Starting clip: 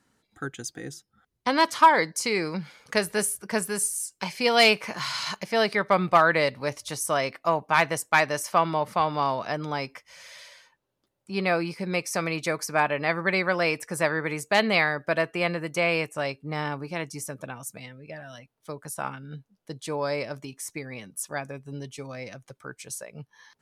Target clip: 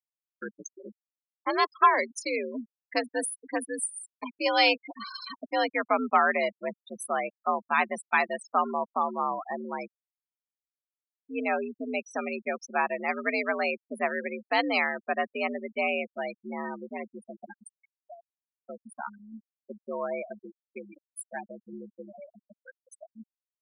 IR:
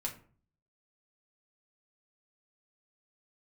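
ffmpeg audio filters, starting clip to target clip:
-af "afreqshift=71,afftfilt=real='re*gte(hypot(re,im),0.0794)':imag='im*gte(hypot(re,im),0.0794)':win_size=1024:overlap=0.75,volume=-3.5dB"

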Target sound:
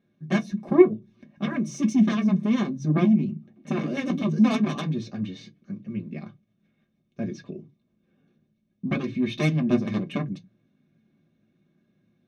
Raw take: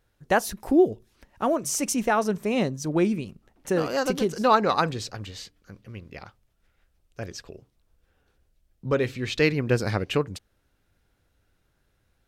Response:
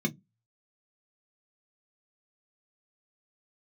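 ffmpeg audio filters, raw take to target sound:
-filter_complex "[0:a]lowpass=4.7k,aeval=exprs='0.473*(cos(1*acos(clip(val(0)/0.473,-1,1)))-cos(1*PI/2))+0.0335*(cos(3*acos(clip(val(0)/0.473,-1,1)))-cos(3*PI/2))+0.106*(cos(7*acos(clip(val(0)/0.473,-1,1)))-cos(7*PI/2))':c=same,alimiter=limit=-15.5dB:level=0:latency=1:release=354[a];[1:a]atrim=start_sample=2205[b];[a][b]afir=irnorm=-1:irlink=0,volume=-5.5dB"

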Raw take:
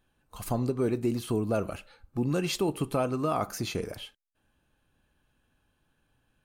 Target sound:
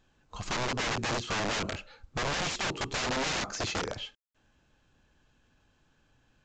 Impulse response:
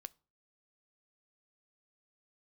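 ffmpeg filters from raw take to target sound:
-af "aeval=exprs='(mod(26.6*val(0)+1,2)-1)/26.6':c=same,volume=3dB" -ar 16000 -c:a pcm_mulaw

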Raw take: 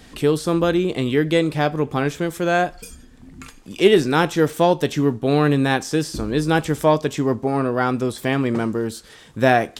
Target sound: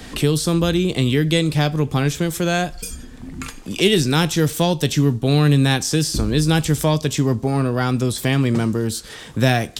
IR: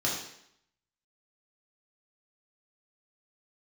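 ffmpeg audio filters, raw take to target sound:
-filter_complex "[0:a]acrossover=split=180|3000[a][b][c];[b]acompressor=threshold=-39dB:ratio=2[d];[a][d][c]amix=inputs=3:normalize=0,volume=9dB"

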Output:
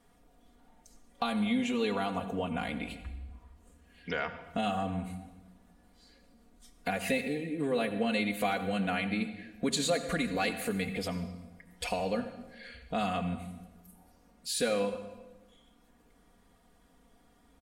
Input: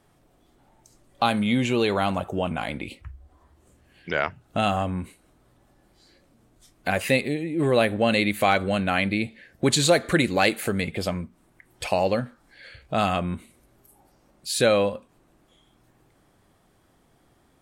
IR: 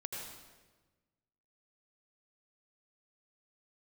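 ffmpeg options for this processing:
-filter_complex "[0:a]acompressor=threshold=-29dB:ratio=2,aecho=1:1:4.2:0.98,asplit=2[a][b];[1:a]atrim=start_sample=2205,asetrate=48510,aresample=44100,lowshelf=f=120:g=10.5[c];[b][c]afir=irnorm=-1:irlink=0,volume=-5.5dB[d];[a][d]amix=inputs=2:normalize=0,volume=-8.5dB"

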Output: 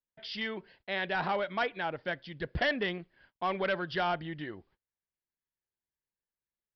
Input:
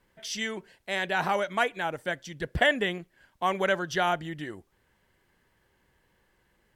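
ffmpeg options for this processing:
-af "agate=range=-31dB:threshold=-60dB:ratio=16:detection=peak,aresample=11025,asoftclip=type=tanh:threshold=-20dB,aresample=44100,volume=-2.5dB"

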